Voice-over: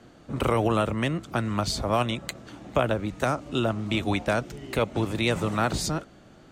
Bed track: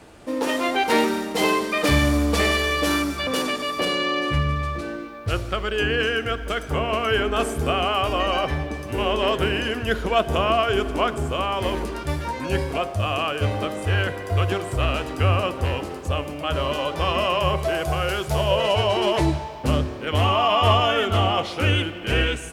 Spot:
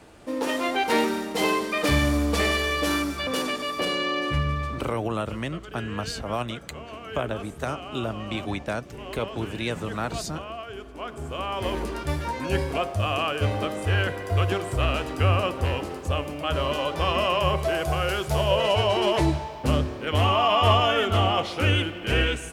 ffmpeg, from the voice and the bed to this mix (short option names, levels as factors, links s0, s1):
-filter_complex "[0:a]adelay=4400,volume=0.596[s0];[1:a]volume=3.98,afade=t=out:st=4.63:d=0.37:silence=0.211349,afade=t=in:st=10.94:d=0.98:silence=0.177828[s1];[s0][s1]amix=inputs=2:normalize=0"